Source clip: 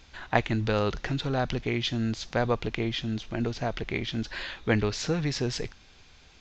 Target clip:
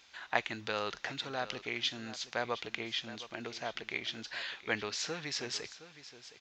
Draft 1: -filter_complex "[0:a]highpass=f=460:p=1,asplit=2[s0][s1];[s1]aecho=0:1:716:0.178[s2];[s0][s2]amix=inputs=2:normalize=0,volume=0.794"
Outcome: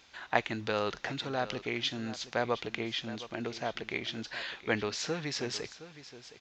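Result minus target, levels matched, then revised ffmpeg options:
500 Hz band +3.0 dB
-filter_complex "[0:a]highpass=f=1200:p=1,asplit=2[s0][s1];[s1]aecho=0:1:716:0.178[s2];[s0][s2]amix=inputs=2:normalize=0,volume=0.794"

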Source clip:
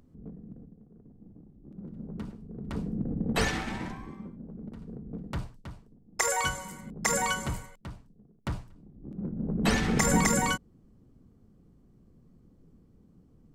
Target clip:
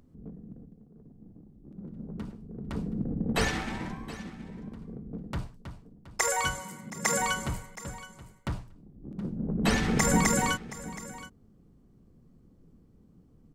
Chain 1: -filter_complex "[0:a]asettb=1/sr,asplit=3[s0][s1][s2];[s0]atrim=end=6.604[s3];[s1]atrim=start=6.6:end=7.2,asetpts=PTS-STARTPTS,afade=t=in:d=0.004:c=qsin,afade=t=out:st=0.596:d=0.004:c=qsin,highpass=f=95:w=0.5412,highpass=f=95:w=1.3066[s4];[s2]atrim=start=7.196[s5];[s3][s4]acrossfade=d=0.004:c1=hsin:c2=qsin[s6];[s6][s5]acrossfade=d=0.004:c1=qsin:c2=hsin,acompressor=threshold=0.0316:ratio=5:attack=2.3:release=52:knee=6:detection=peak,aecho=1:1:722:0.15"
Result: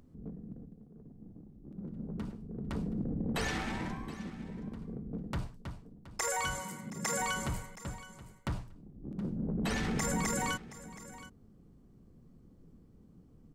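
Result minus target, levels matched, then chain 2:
compression: peak gain reduction +11 dB
-filter_complex "[0:a]asettb=1/sr,asplit=3[s0][s1][s2];[s0]atrim=end=6.604[s3];[s1]atrim=start=6.6:end=7.2,asetpts=PTS-STARTPTS,afade=t=in:d=0.004:c=qsin,afade=t=out:st=0.596:d=0.004:c=qsin,highpass=f=95:w=0.5412,highpass=f=95:w=1.3066[s4];[s2]atrim=start=7.196[s5];[s3][s4]acrossfade=d=0.004:c1=hsin:c2=qsin[s6];[s6][s5]acrossfade=d=0.004:c1=qsin:c2=hsin,aecho=1:1:722:0.15"

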